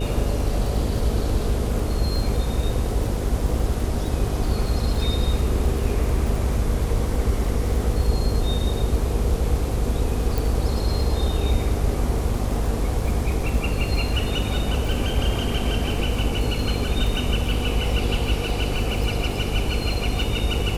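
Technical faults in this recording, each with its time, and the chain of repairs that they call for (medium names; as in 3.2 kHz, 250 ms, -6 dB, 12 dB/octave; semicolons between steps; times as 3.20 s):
buzz 50 Hz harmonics 11 -26 dBFS
crackle 41 per s -28 dBFS
10.38 s: pop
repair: de-click; de-hum 50 Hz, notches 11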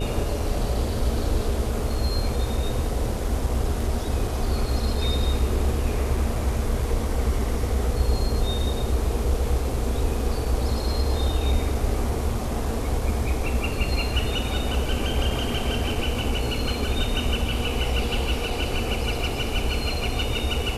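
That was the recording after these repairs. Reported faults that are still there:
nothing left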